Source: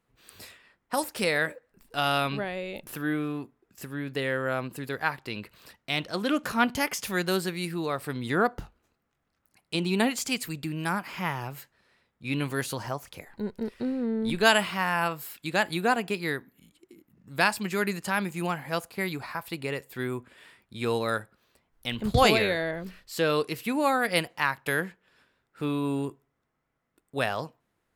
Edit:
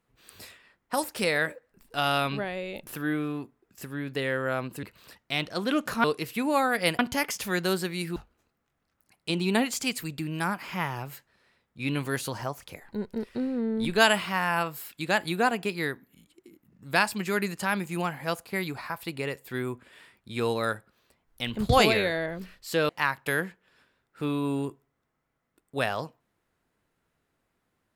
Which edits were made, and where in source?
0:04.83–0:05.41: remove
0:07.79–0:08.61: remove
0:23.34–0:24.29: move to 0:06.62

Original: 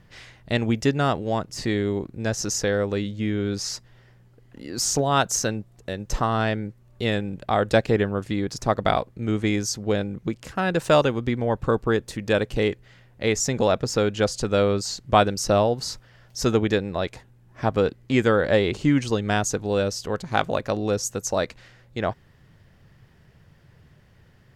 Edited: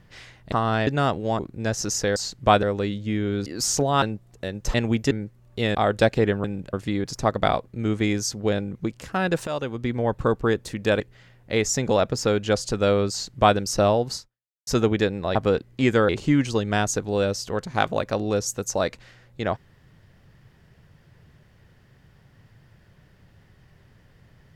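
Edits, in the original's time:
0:00.52–0:00.89: swap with 0:06.19–0:06.54
0:01.41–0:01.99: remove
0:03.59–0:04.64: remove
0:05.20–0:05.47: remove
0:07.18–0:07.47: move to 0:08.16
0:10.90–0:11.43: fade in, from −15 dB
0:12.43–0:12.71: remove
0:14.82–0:15.29: duplicate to 0:02.76
0:15.86–0:16.38: fade out exponential
0:17.06–0:17.66: remove
0:18.40–0:18.66: remove

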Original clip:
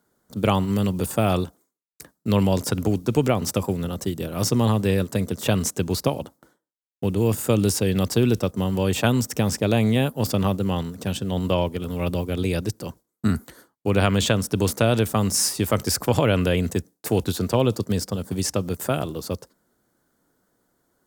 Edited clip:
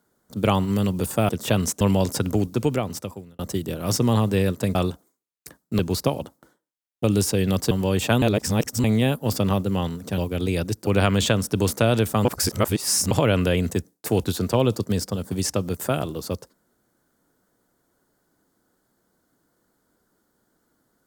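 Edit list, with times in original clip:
0:01.29–0:02.33: swap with 0:05.27–0:05.79
0:02.97–0:03.91: fade out
0:07.04–0:07.52: remove
0:08.19–0:08.65: remove
0:09.16–0:09.78: reverse
0:11.12–0:12.15: remove
0:12.84–0:13.87: remove
0:15.25–0:16.11: reverse

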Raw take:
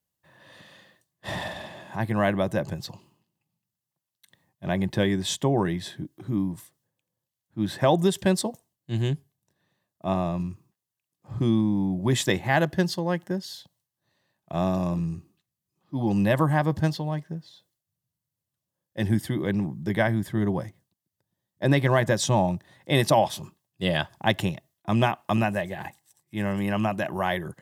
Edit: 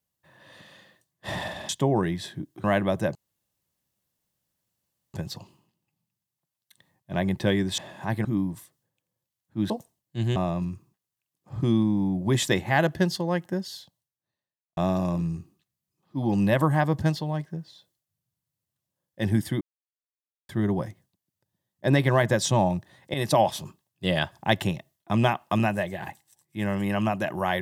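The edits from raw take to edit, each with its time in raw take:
0:01.69–0:02.16: swap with 0:05.31–0:06.26
0:02.67: splice in room tone 1.99 s
0:07.71–0:08.44: remove
0:09.10–0:10.14: remove
0:13.49–0:14.55: fade out quadratic
0:19.39–0:20.27: silence
0:22.92–0:23.24: fade in equal-power, from −12.5 dB

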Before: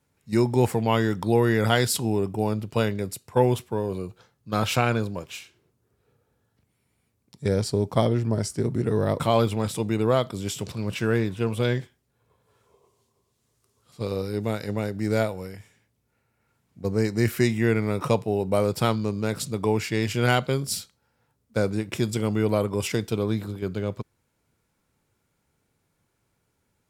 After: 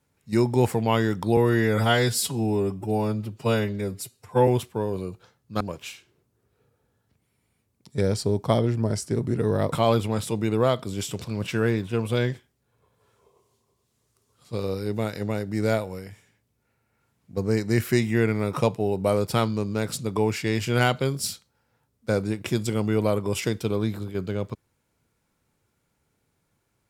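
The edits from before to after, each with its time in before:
0:01.37–0:03.44: time-stretch 1.5×
0:04.57–0:05.08: remove

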